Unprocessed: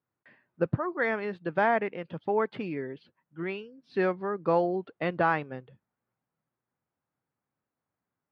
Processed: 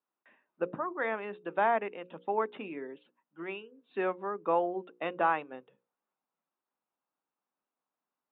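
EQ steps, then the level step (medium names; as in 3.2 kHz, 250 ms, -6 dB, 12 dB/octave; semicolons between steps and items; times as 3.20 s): high-pass 210 Hz 24 dB/octave; rippled Chebyshev low-pass 3.8 kHz, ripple 6 dB; hum notches 60/120/180/240/300/360/420/480/540 Hz; 0.0 dB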